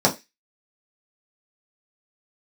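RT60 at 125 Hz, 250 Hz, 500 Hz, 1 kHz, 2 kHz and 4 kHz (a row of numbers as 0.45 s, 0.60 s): 0.15 s, 0.20 s, 0.25 s, 0.20 s, 0.25 s, 0.30 s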